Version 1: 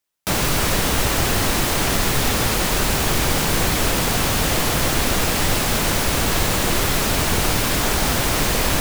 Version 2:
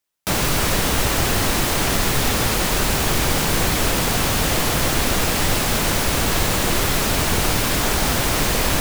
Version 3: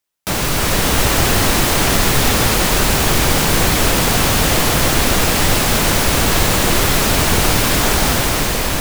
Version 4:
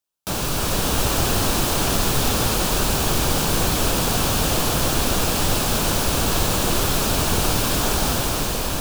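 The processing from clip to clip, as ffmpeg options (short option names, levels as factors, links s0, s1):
-af anull
-af "dynaudnorm=f=110:g=13:m=2.11,volume=1.12"
-af "equalizer=f=2000:t=o:w=0.39:g=-10,volume=0.531"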